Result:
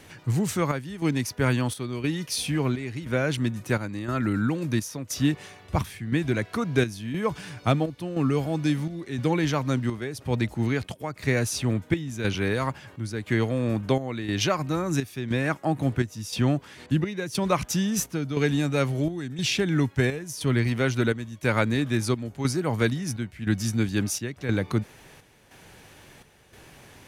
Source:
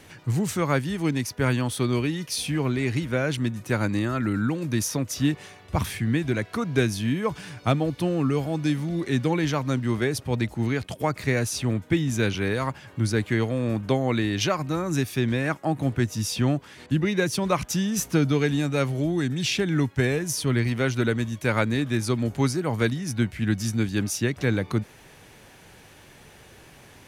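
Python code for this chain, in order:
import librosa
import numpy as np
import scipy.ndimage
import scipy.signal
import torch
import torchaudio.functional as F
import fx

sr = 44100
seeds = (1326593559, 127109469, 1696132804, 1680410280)

y = fx.chopper(x, sr, hz=0.98, depth_pct=60, duty_pct=70)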